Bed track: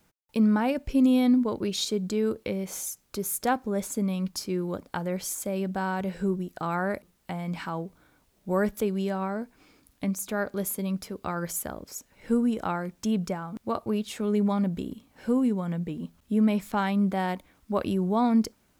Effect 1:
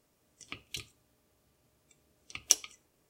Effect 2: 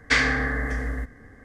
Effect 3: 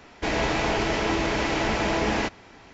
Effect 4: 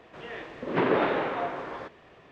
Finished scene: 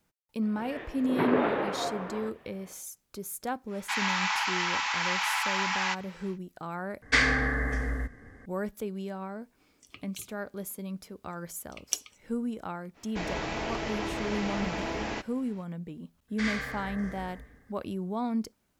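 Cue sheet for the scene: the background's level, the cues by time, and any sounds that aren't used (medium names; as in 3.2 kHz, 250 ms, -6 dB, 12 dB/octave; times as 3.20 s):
bed track -8 dB
0.42 s: add 4 -2 dB + treble shelf 4.2 kHz -9 dB
3.66 s: add 3, fades 0.10 s + steep high-pass 830 Hz 72 dB/octave
7.02 s: replace with 2 -2.5 dB
9.42 s: add 1 -5.5 dB
12.93 s: add 3 -9 dB, fades 0.05 s
16.28 s: add 2 -17 dB + Schroeder reverb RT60 0.68 s, DRR -3.5 dB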